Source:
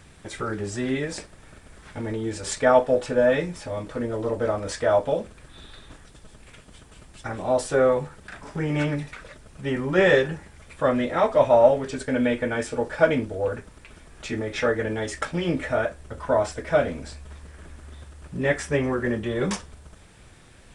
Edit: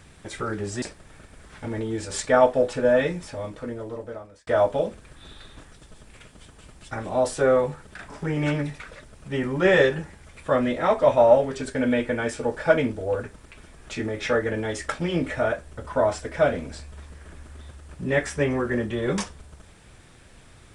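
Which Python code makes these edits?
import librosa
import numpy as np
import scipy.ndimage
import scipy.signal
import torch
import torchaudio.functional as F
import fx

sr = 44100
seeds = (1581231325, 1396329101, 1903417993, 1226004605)

y = fx.edit(x, sr, fx.cut(start_s=0.82, length_s=0.33),
    fx.fade_out_span(start_s=3.49, length_s=1.31), tone=tone)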